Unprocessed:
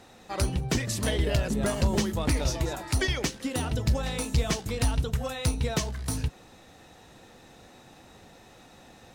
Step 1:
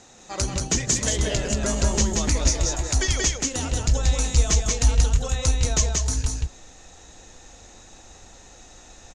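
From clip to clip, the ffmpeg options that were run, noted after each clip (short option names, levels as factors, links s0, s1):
-af "lowpass=f=6800:t=q:w=6.6,asubboost=boost=7.5:cutoff=50,aecho=1:1:181:0.708"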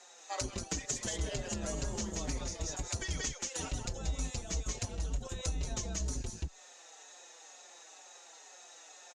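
-filter_complex "[0:a]acrossover=split=440|3400[s0][s1][s2];[s0]acrusher=bits=3:mix=0:aa=0.5[s3];[s3][s1][s2]amix=inputs=3:normalize=0,acompressor=threshold=0.0355:ratio=6,asplit=2[s4][s5];[s5]adelay=5.1,afreqshift=-2.1[s6];[s4][s6]amix=inputs=2:normalize=1,volume=0.841"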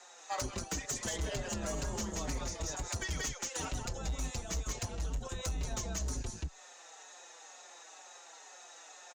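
-filter_complex "[0:a]acrossover=split=140|920|1500[s0][s1][s2][s3];[s2]acontrast=86[s4];[s0][s1][s4][s3]amix=inputs=4:normalize=0,volume=31.6,asoftclip=hard,volume=0.0316"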